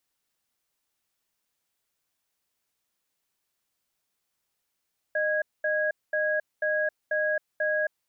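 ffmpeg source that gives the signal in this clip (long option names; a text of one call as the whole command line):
ffmpeg -f lavfi -i "aevalsrc='0.0501*(sin(2*PI*614*t)+sin(2*PI*1650*t))*clip(min(mod(t,0.49),0.27-mod(t,0.49))/0.005,0,1)':duration=2.75:sample_rate=44100" out.wav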